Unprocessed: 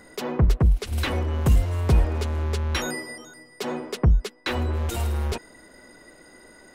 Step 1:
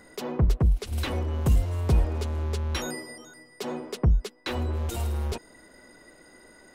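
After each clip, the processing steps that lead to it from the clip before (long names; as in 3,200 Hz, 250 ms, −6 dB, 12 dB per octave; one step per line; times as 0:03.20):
dynamic equaliser 1,800 Hz, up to −4 dB, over −44 dBFS, Q 1
level −3 dB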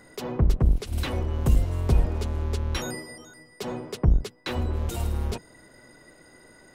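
sub-octave generator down 1 octave, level −4 dB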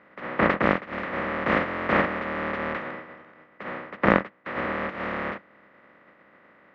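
compressing power law on the bin magnitudes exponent 0.2
loudspeaker in its box 100–2,200 Hz, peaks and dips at 120 Hz −5 dB, 200 Hz +9 dB, 300 Hz +5 dB, 550 Hz +9 dB, 1,200 Hz +7 dB, 1,900 Hz +8 dB
level −2.5 dB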